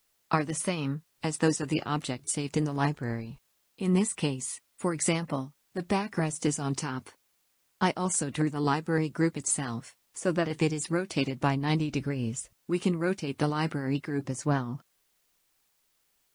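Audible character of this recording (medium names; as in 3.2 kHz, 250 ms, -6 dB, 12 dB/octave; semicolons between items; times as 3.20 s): tremolo triangle 3.6 Hz, depth 65%; a quantiser's noise floor 12-bit, dither triangular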